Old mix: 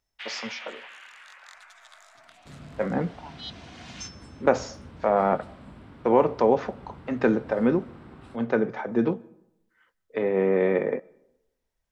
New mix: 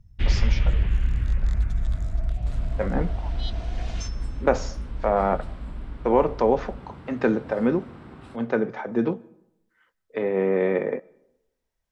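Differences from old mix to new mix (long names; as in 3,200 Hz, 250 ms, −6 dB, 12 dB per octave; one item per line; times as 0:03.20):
first sound: remove high-pass filter 880 Hz 24 dB per octave
second sound +3.0 dB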